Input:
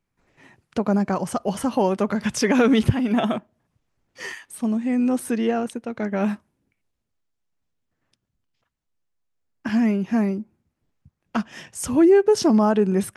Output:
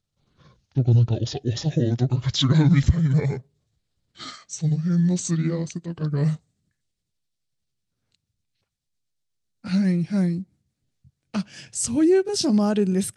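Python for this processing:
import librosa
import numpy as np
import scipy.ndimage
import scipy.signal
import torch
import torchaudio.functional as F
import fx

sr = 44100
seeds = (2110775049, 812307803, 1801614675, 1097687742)

y = fx.pitch_glide(x, sr, semitones=-10.0, runs='ending unshifted')
y = fx.graphic_eq(y, sr, hz=(125, 1000, 4000, 8000), db=(8, -7, 8, 9))
y = y * 10.0 ** (-3.0 / 20.0)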